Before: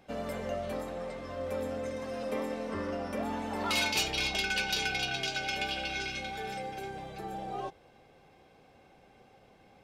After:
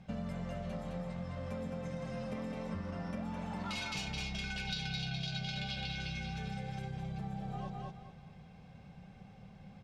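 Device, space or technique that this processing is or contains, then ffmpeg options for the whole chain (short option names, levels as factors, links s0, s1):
jukebox: -filter_complex "[0:a]asettb=1/sr,asplit=3[s0][s1][s2];[s0]atrim=end=4.674[s3];[s1]atrim=start=4.67:end=5.92,asetpts=PTS-STARTPTS,afade=t=in:d=0.004:c=qsin,afade=t=out:st=1.246:d=0.004:c=qsin,equalizer=f=160:t=o:w=0.67:g=8,equalizer=f=630:t=o:w=0.67:g=4,equalizer=f=4000:t=o:w=0.67:g=11[s4];[s2]atrim=start=5.916[s5];[s3][s4]acrossfade=d=0.004:c1=hsin:c2=qsin[s6];[s6][s5]acrossfade=d=0.004:c1=qsin:c2=hsin,lowpass=7600,lowshelf=f=240:t=q:w=3:g=10,aecho=1:1:212|424|636:0.562|0.146|0.038,acompressor=threshold=0.0178:ratio=5,volume=0.794"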